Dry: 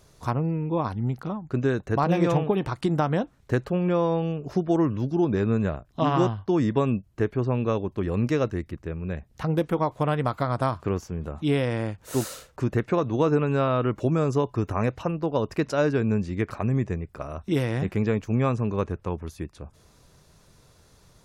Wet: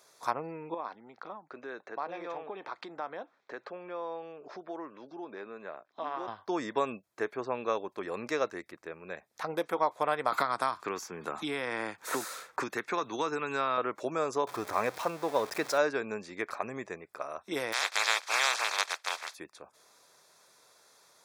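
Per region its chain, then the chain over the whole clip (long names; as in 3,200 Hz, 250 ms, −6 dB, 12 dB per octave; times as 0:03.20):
0:00.74–0:06.28: downward compressor 2.5 to 1, threshold −32 dBFS + band-pass filter 200–5,000 Hz + high-frequency loss of the air 89 metres
0:10.32–0:13.78: parametric band 580 Hz −8.5 dB 0.72 octaves + multiband upward and downward compressor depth 100%
0:14.47–0:15.78: converter with a step at zero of −34.5 dBFS + low-shelf EQ 94 Hz +11 dB
0:17.72–0:19.33: compressing power law on the bin magnitudes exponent 0.15 + band-pass filter 580–4,900 Hz
whole clip: high-pass filter 610 Hz 12 dB per octave; notch filter 2,900 Hz, Q 6.1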